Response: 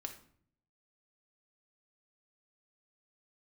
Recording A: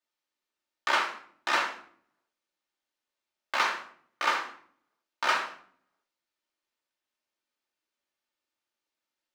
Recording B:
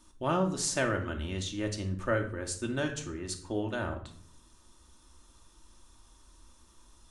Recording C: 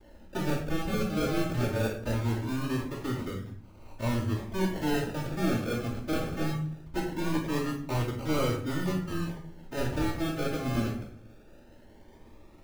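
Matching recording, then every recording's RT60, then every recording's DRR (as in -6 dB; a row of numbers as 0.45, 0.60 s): B; 0.55, 0.55, 0.55 s; -2.0, 2.5, -8.5 dB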